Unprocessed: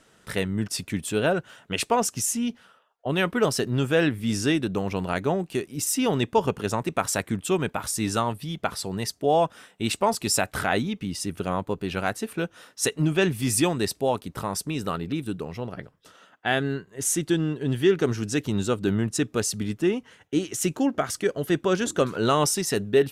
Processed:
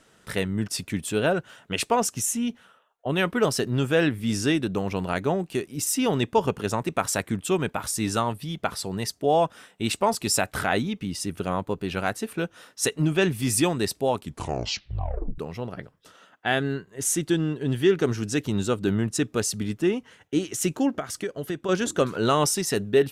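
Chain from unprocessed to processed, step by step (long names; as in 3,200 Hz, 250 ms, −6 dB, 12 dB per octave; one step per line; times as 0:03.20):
0:02.16–0:03.19: parametric band 4,800 Hz −9.5 dB 0.21 octaves
0:14.14: tape stop 1.24 s
0:20.97–0:21.69: downward compressor 6 to 1, threshold −27 dBFS, peak gain reduction 9 dB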